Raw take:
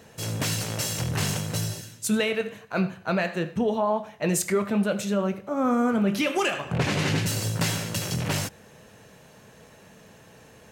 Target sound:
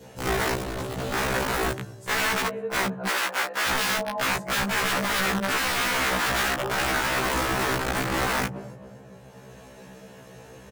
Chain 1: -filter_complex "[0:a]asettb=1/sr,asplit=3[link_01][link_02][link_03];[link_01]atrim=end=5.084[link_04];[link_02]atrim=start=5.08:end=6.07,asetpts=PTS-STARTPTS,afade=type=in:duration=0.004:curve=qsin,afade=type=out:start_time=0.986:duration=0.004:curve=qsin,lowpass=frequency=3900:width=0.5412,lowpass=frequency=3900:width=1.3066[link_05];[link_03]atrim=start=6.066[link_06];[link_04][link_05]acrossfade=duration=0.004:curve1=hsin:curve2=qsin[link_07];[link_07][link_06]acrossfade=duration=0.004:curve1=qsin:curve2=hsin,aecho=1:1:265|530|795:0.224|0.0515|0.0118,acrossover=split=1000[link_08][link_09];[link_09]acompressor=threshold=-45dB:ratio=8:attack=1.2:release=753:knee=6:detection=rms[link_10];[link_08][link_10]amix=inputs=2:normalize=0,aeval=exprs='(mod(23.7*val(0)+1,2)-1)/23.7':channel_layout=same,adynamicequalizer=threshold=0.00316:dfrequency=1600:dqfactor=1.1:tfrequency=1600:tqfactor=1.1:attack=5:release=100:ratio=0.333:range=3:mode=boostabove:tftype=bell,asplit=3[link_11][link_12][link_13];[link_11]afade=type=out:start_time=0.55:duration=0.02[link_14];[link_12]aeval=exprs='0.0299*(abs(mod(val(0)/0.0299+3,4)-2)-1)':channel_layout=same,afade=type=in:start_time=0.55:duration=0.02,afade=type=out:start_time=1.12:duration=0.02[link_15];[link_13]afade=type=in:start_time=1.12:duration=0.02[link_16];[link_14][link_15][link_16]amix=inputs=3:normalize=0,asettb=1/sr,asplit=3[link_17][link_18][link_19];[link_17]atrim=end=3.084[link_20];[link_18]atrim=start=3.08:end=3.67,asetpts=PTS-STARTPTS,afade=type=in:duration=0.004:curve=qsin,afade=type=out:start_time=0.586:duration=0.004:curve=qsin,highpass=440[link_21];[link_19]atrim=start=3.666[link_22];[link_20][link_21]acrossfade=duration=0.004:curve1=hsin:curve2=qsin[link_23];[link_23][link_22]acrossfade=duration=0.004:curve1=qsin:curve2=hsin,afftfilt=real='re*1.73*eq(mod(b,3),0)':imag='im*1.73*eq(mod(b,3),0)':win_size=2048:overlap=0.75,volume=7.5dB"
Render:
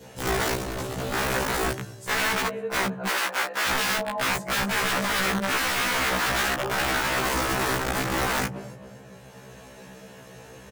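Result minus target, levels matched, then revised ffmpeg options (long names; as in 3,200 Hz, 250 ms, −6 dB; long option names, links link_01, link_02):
downward compressor: peak gain reduction −5.5 dB
-filter_complex "[0:a]asettb=1/sr,asplit=3[link_01][link_02][link_03];[link_01]atrim=end=5.084[link_04];[link_02]atrim=start=5.08:end=6.07,asetpts=PTS-STARTPTS,afade=type=in:duration=0.004:curve=qsin,afade=type=out:start_time=0.986:duration=0.004:curve=qsin,lowpass=frequency=3900:width=0.5412,lowpass=frequency=3900:width=1.3066[link_05];[link_03]atrim=start=6.066[link_06];[link_04][link_05]acrossfade=duration=0.004:curve1=hsin:curve2=qsin[link_07];[link_07][link_06]acrossfade=duration=0.004:curve1=qsin:curve2=hsin,aecho=1:1:265|530|795:0.224|0.0515|0.0118,acrossover=split=1000[link_08][link_09];[link_09]acompressor=threshold=-51.5dB:ratio=8:attack=1.2:release=753:knee=6:detection=rms[link_10];[link_08][link_10]amix=inputs=2:normalize=0,aeval=exprs='(mod(23.7*val(0)+1,2)-1)/23.7':channel_layout=same,adynamicequalizer=threshold=0.00316:dfrequency=1600:dqfactor=1.1:tfrequency=1600:tqfactor=1.1:attack=5:release=100:ratio=0.333:range=3:mode=boostabove:tftype=bell,asplit=3[link_11][link_12][link_13];[link_11]afade=type=out:start_time=0.55:duration=0.02[link_14];[link_12]aeval=exprs='0.0299*(abs(mod(val(0)/0.0299+3,4)-2)-1)':channel_layout=same,afade=type=in:start_time=0.55:duration=0.02,afade=type=out:start_time=1.12:duration=0.02[link_15];[link_13]afade=type=in:start_time=1.12:duration=0.02[link_16];[link_14][link_15][link_16]amix=inputs=3:normalize=0,asettb=1/sr,asplit=3[link_17][link_18][link_19];[link_17]atrim=end=3.084[link_20];[link_18]atrim=start=3.08:end=3.67,asetpts=PTS-STARTPTS,afade=type=in:duration=0.004:curve=qsin,afade=type=out:start_time=0.586:duration=0.004:curve=qsin,highpass=440[link_21];[link_19]atrim=start=3.666[link_22];[link_20][link_21]acrossfade=duration=0.004:curve1=hsin:curve2=qsin[link_23];[link_23][link_22]acrossfade=duration=0.004:curve1=qsin:curve2=hsin,afftfilt=real='re*1.73*eq(mod(b,3),0)':imag='im*1.73*eq(mod(b,3),0)':win_size=2048:overlap=0.75,volume=7.5dB"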